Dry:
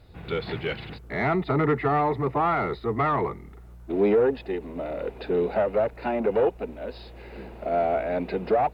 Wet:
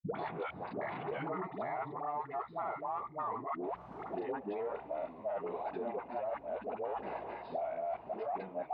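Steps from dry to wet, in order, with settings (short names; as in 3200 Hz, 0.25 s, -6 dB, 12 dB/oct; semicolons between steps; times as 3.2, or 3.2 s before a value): slices in reverse order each 0.192 s, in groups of 3; limiter -17 dBFS, peak gain reduction 5 dB; band shelf 840 Hz +10.5 dB 1.1 oct; grains, spray 29 ms, pitch spread up and down by 0 st; tilt +1.5 dB/oct; dispersion highs, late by 0.126 s, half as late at 450 Hz; reverse; compressor 4:1, threshold -41 dBFS, peak gain reduction 22.5 dB; reverse; BPF 140–2000 Hz; three-band squash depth 100%; gain +1.5 dB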